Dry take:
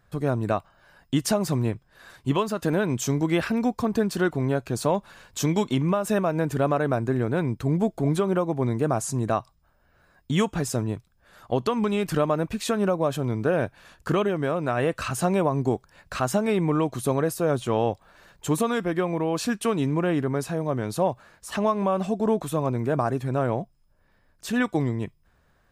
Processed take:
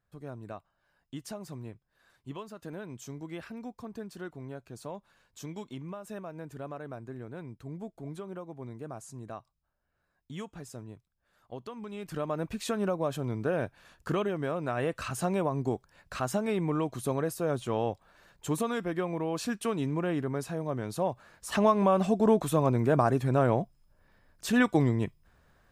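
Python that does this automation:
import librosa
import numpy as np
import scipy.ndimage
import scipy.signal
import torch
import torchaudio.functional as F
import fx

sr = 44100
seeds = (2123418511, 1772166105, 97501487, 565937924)

y = fx.gain(x, sr, db=fx.line((11.85, -17.5), (12.46, -6.5), (21.04, -6.5), (21.55, 0.0)))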